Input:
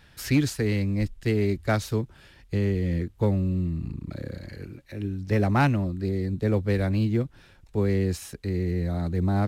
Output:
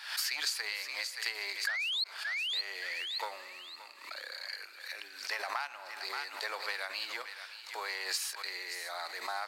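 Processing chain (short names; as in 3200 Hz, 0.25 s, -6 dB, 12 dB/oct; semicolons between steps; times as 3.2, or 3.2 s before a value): spring tank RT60 1.1 s, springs 49 ms, DRR 17.5 dB; painted sound rise, 1.67–2.04, 1600–4400 Hz -19 dBFS; in parallel at -9 dB: sine folder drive 5 dB, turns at -9 dBFS; on the sum: inverse Chebyshev high-pass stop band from 150 Hz, stop band 80 dB; on a send: thinning echo 0.573 s, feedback 29%, high-pass 1200 Hz, level -13 dB; on the sum: compressor 16:1, threshold -33 dBFS, peak gain reduction 20.5 dB; bell 4600 Hz +10.5 dB 0.21 oct; backwards sustainer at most 89 dB/s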